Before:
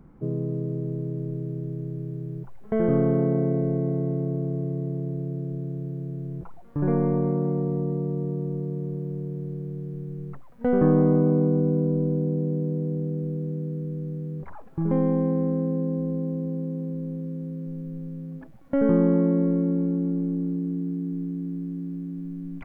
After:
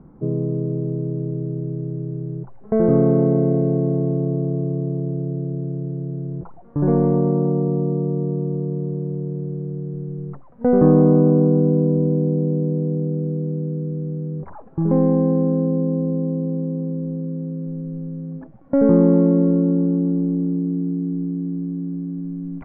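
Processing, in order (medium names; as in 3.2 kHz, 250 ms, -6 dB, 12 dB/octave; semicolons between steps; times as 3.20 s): low-pass 1.1 kHz 12 dB/octave; bass shelf 63 Hz -7.5 dB; trim +6.5 dB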